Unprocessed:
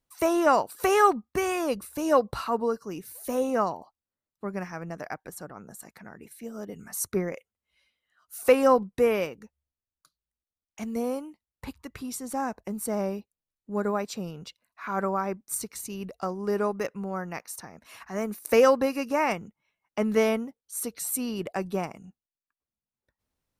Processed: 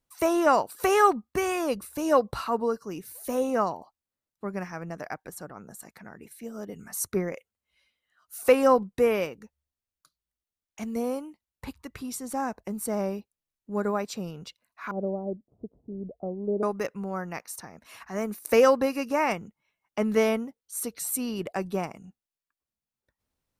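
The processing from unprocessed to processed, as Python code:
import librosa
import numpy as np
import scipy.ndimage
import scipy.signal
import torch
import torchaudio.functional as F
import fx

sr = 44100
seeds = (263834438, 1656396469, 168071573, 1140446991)

y = fx.ellip_lowpass(x, sr, hz=660.0, order=4, stop_db=80, at=(14.91, 16.63))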